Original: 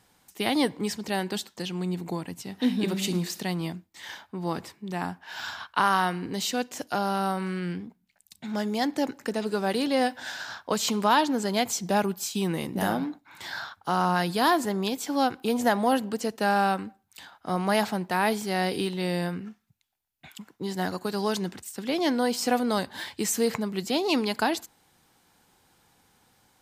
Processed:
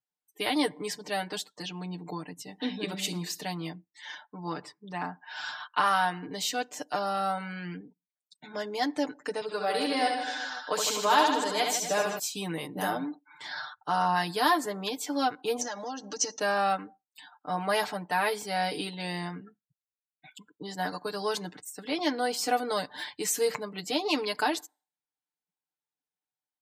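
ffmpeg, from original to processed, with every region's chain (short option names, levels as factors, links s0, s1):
-filter_complex "[0:a]asettb=1/sr,asplit=3[s0][s1][s2];[s0]atrim=end=9.414[s3];[s1]atrim=start=9.41:end=12.19,asetpts=PTS-STARTPTS,afade=t=in:d=0.004:c=qsin,afade=t=out:st=2.776:d=0.004:c=qsin,highpass=f=270:p=1,aecho=1:1:70|154|254.8|375.8|520.9:0.631|0.398|0.251|0.158|0.1,atrim=end_sample=122598[s4];[s2]atrim=start=12.186[s5];[s3][s4]acrossfade=d=0.004:c1=hsin:c2=qsin[s6];[s6][s5]acrossfade=d=0.004:c1=qsin:c2=hsin,asettb=1/sr,asplit=3[s7][s8][s9];[s7]atrim=end=15.614[s10];[s8]atrim=start=15.61:end=16.39,asetpts=PTS-STARTPTS,afade=t=in:d=0.004:c=qsin,afade=t=out:st=0.776:d=0.004:c=qsin,aecho=1:1:3.6:0.44,atrim=end_sample=34398,acompressor=threshold=0.0447:ratio=10:attack=3.2:release=140:knee=1:detection=peak,lowpass=f=6000:t=q:w=9.6[s11];[s9]atrim=start=16.386[s12];[s10][s11]acrossfade=d=0.004:c1=hsin:c2=qsin[s13];[s13][s12]acrossfade=d=0.004:c1=qsin:c2=hsin,afftdn=nr=34:nf=-48,highpass=f=380:p=1,aecho=1:1:6.7:0.91,volume=0.668"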